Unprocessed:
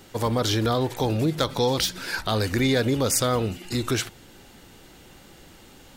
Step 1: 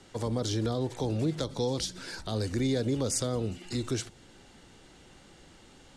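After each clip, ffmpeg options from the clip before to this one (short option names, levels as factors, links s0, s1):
-filter_complex "[0:a]lowpass=f=9300:w=0.5412,lowpass=f=9300:w=1.3066,bandreject=f=2500:w=29,acrossover=split=220|620|4300[s0][s1][s2][s3];[s2]acompressor=threshold=0.0126:ratio=6[s4];[s0][s1][s4][s3]amix=inputs=4:normalize=0,volume=0.531"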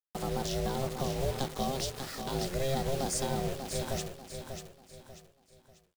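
-af "aeval=exprs='val(0)*sin(2*PI*270*n/s)':c=same,acrusher=bits=6:mix=0:aa=0.000001,aecho=1:1:591|1182|1773|2364:0.422|0.148|0.0517|0.0181"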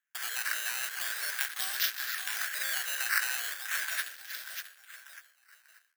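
-af "acrusher=samples=9:mix=1:aa=0.000001:lfo=1:lforange=9:lforate=0.4,crystalizer=i=4.5:c=0,highpass=f=1600:t=q:w=7,volume=0.531"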